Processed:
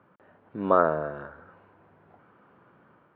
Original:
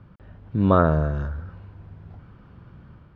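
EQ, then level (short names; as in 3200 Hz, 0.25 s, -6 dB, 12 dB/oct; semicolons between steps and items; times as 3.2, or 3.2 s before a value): BPF 400–2100 Hz; air absorption 51 m; 0.0 dB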